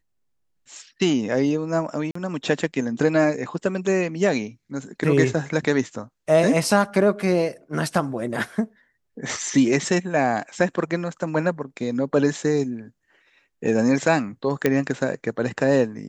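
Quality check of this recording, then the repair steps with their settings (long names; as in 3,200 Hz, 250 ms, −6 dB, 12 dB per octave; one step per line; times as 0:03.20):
0:02.11–0:02.15: drop-out 44 ms
0:14.66: click −6 dBFS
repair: click removal
repair the gap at 0:02.11, 44 ms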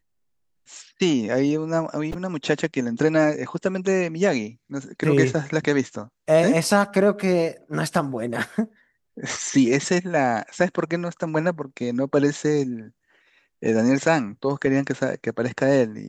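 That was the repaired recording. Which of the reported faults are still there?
none of them is left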